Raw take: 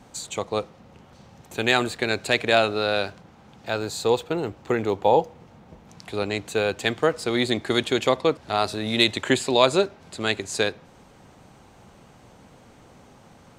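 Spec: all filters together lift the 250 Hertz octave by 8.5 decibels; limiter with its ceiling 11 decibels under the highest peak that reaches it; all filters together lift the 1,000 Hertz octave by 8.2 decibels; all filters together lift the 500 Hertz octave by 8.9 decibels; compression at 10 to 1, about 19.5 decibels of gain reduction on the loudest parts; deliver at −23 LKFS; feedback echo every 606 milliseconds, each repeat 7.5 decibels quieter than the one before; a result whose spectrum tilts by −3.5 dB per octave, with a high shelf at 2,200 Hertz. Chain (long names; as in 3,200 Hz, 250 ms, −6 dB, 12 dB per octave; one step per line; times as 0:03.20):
parametric band 250 Hz +8 dB
parametric band 500 Hz +6.5 dB
parametric band 1,000 Hz +7 dB
high-shelf EQ 2,200 Hz +4.5 dB
downward compressor 10 to 1, threshold −26 dBFS
brickwall limiter −22.5 dBFS
repeating echo 606 ms, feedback 42%, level −7.5 dB
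level +12 dB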